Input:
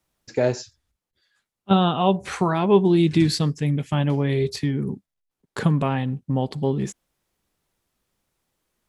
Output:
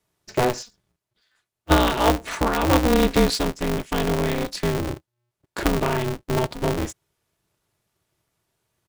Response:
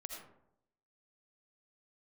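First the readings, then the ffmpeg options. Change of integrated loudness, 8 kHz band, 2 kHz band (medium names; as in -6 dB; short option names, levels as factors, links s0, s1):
-0.5 dB, +6.0 dB, +6.0 dB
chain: -af "aecho=1:1:3.8:0.47,aresample=32000,aresample=44100,aeval=exprs='val(0)*sgn(sin(2*PI*120*n/s))':c=same"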